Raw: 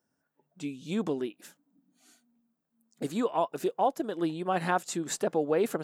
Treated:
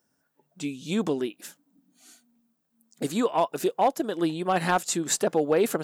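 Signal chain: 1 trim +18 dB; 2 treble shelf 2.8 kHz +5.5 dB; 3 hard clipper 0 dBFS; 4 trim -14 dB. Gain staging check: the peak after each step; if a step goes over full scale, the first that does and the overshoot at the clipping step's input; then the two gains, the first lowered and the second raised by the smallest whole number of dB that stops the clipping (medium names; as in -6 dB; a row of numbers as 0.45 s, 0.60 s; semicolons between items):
+4.0 dBFS, +5.0 dBFS, 0.0 dBFS, -14.0 dBFS; step 1, 5.0 dB; step 1 +13 dB, step 4 -9 dB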